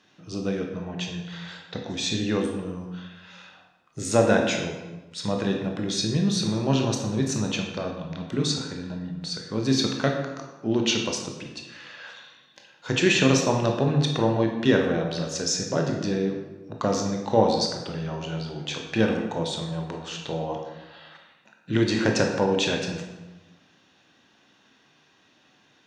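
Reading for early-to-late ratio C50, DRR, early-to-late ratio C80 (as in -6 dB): 4.5 dB, 1.5 dB, 6.5 dB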